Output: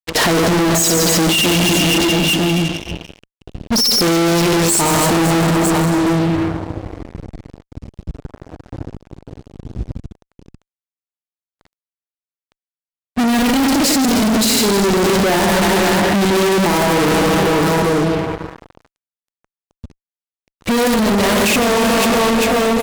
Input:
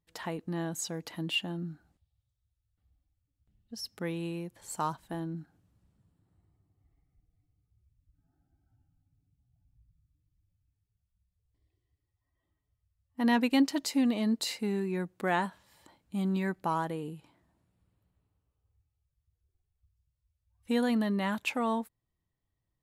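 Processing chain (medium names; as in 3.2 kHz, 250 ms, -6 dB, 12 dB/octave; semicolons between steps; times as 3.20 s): Bessel low-pass 9.6 kHz; tone controls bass -8 dB, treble +12 dB; on a send at -10 dB: reverberation RT60 1.9 s, pre-delay 95 ms; on the sum: level-controlled noise filter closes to 2.8 kHz, open at -27.5 dBFS; in parallel at -7.5 dB: integer overflow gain 25.5 dB; on the sum: band-stop 520 Hz, Q 12; reverse bouncing-ball echo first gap 60 ms, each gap 1.6×, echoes 5; peak limiter -19.5 dBFS, peak gain reduction 7.5 dB; compressor with a negative ratio -34 dBFS, ratio -0.5; resonant low shelf 680 Hz +7 dB, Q 1.5; fuzz box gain 53 dB, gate -58 dBFS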